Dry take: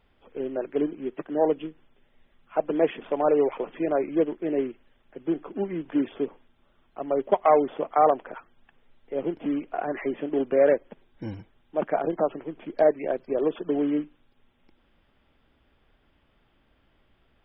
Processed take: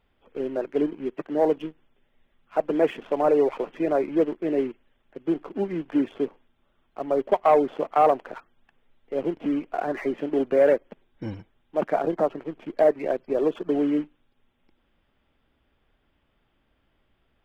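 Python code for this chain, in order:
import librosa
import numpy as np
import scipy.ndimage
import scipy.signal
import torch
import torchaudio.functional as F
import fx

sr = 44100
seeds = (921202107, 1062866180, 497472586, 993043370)

y = fx.leveller(x, sr, passes=1)
y = F.gain(torch.from_numpy(y), -2.0).numpy()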